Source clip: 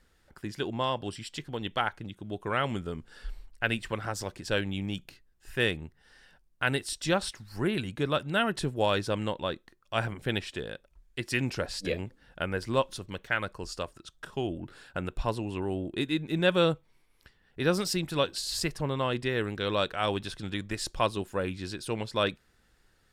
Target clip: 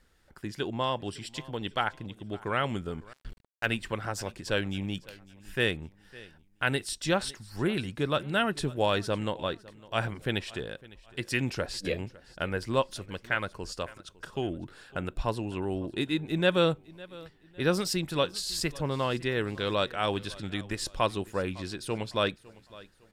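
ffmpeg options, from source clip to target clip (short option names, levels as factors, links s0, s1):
-filter_complex "[0:a]aecho=1:1:556|1112|1668:0.0891|0.0321|0.0116,asettb=1/sr,asplit=3[s0][s1][s2];[s0]atrim=end=3.134[s3];[s1]atrim=start=3.13:end=3.66,asetpts=PTS-STARTPTS,afade=t=in:d=0.004:c=qsin,afade=t=out:st=0.526:d=0.004:c=qsin,aeval=exprs='sgn(val(0))*max(abs(val(0))-0.0126,0)':c=same[s4];[s2]atrim=start=3.656[s5];[s3][s4]acrossfade=d=0.004:c1=hsin:c2=qsin[s6];[s6][s5]acrossfade=d=0.004:c1=qsin:c2=hsin"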